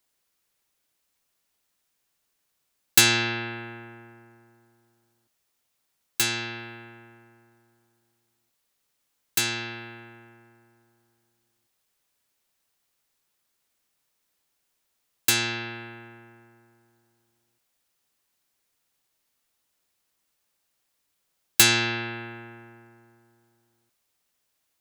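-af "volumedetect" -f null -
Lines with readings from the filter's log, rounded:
mean_volume: -33.7 dB
max_volume: -2.0 dB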